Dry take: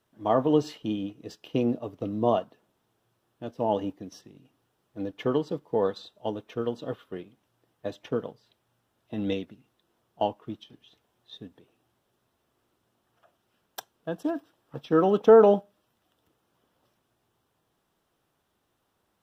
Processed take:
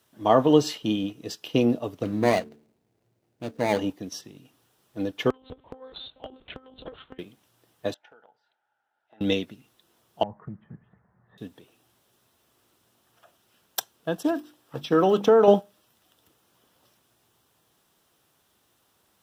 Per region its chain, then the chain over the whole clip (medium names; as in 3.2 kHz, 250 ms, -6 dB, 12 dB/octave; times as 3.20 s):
2.03–3.79 s: median filter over 41 samples + de-hum 74.32 Hz, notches 6
5.30–7.19 s: monotone LPC vocoder at 8 kHz 260 Hz + compression, threshold -36 dBFS + transformer saturation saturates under 190 Hz
7.94–9.21 s: two resonant band-passes 1.1 kHz, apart 0.77 oct + compression 8:1, threshold -56 dBFS
10.23–11.38 s: Chebyshev low-pass 1.9 kHz, order 5 + resonant low shelf 230 Hz +7 dB, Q 3 + compression 12:1, threshold -36 dBFS
14.28–15.48 s: hum notches 50/100/150/200/250/300/350 Hz + compression 2.5:1, threshold -20 dBFS
whole clip: high-pass 47 Hz; treble shelf 2.6 kHz +9.5 dB; trim +4 dB